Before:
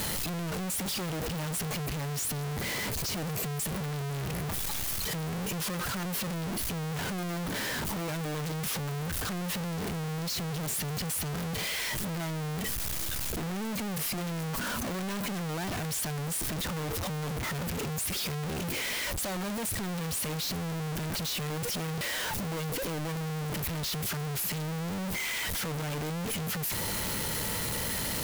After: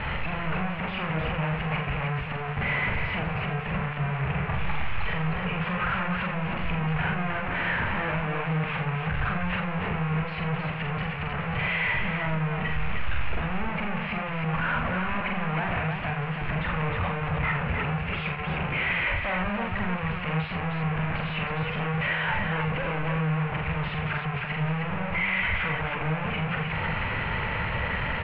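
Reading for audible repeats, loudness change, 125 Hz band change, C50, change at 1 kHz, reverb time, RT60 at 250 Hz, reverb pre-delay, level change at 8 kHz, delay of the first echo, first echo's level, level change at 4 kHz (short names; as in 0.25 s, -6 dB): 3, +4.0 dB, +5.5 dB, none, +9.0 dB, none, none, none, under -40 dB, 44 ms, -3.5 dB, -2.5 dB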